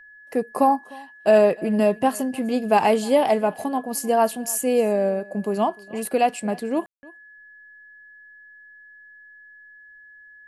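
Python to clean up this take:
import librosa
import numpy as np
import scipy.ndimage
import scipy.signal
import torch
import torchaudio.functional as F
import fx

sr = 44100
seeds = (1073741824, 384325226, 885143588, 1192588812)

y = fx.notch(x, sr, hz=1700.0, q=30.0)
y = fx.fix_ambience(y, sr, seeds[0], print_start_s=9.92, print_end_s=10.42, start_s=6.86, end_s=7.03)
y = fx.fix_echo_inverse(y, sr, delay_ms=303, level_db=-23.0)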